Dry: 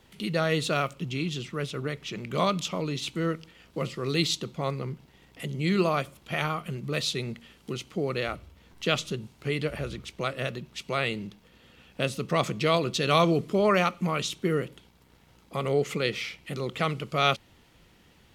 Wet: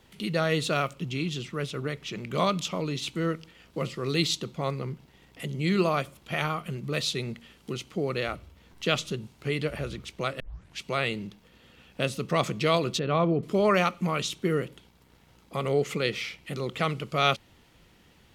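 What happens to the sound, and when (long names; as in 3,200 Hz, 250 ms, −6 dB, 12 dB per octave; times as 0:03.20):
0:10.40: tape start 0.41 s
0:12.99–0:13.43: head-to-tape spacing loss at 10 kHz 41 dB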